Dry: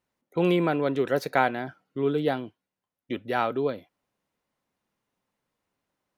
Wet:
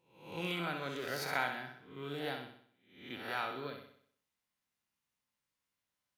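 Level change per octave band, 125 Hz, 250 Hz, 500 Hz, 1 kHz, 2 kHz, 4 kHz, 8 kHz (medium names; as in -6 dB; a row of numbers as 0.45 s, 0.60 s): -13.5 dB, -16.5 dB, -16.5 dB, -11.5 dB, -6.0 dB, -3.0 dB, no reading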